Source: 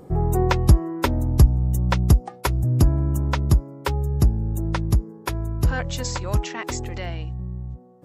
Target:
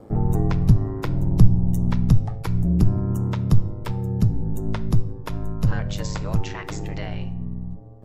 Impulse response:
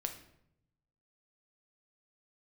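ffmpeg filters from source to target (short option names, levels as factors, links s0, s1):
-filter_complex "[0:a]acrossover=split=220[s0][s1];[s1]acompressor=threshold=0.0316:ratio=6[s2];[s0][s2]amix=inputs=2:normalize=0,aeval=exprs='val(0)*sin(2*PI*52*n/s)':c=same,asplit=2[s3][s4];[1:a]atrim=start_sample=2205,lowpass=6600[s5];[s4][s5]afir=irnorm=-1:irlink=0,volume=0.841[s6];[s3][s6]amix=inputs=2:normalize=0,volume=0.794"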